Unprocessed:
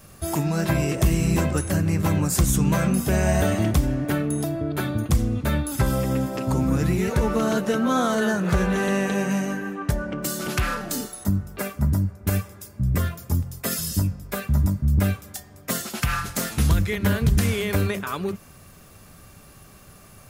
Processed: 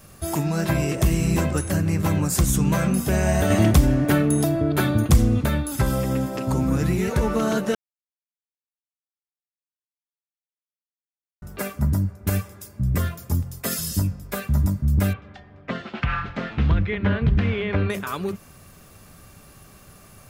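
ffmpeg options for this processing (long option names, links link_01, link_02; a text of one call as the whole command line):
ffmpeg -i in.wav -filter_complex "[0:a]asettb=1/sr,asplit=3[link_01][link_02][link_03];[link_01]atrim=end=3.504[link_04];[link_02]atrim=start=3.5:end=5.46,asetpts=PTS-STARTPTS,afade=type=in:duration=0.004:curve=qsin,afade=type=out:start_time=1.956:duration=0.004:curve=qsin,acontrast=29[link_05];[link_03]atrim=start=5.456[link_06];[link_04][link_05]acrossfade=duration=0.004:curve1=hsin:curve2=qsin[link_07];[link_07][link_06]acrossfade=duration=0.004:curve1=qsin:curve2=hsin,asettb=1/sr,asplit=3[link_08][link_09][link_10];[link_08]atrim=end=15.134[link_11];[link_09]atrim=start=15.13:end=17.9,asetpts=PTS-STARTPTS,afade=type=in:duration=0.004:curve=qsin,afade=type=out:start_time=2.766:duration=0.004:curve=qsin,lowpass=frequency=3100:width=0.5412,lowpass=frequency=3100:width=1.3066[link_12];[link_10]atrim=start=17.896[link_13];[link_11][link_12]acrossfade=duration=0.004:curve1=hsin:curve2=qsin[link_14];[link_14][link_13]acrossfade=duration=0.004:curve1=qsin:curve2=hsin,asplit=3[link_15][link_16][link_17];[link_15]atrim=end=7.75,asetpts=PTS-STARTPTS,afade=type=out:start_time=7.746:duration=0.004:curve=hsin[link_18];[link_16]atrim=start=7.75:end=11.42,asetpts=PTS-STARTPTS,volume=0[link_19];[link_17]atrim=start=11.42,asetpts=PTS-STARTPTS,afade=type=in:duration=0.004:curve=hsin[link_20];[link_18][link_19][link_20]concat=n=3:v=0:a=1" out.wav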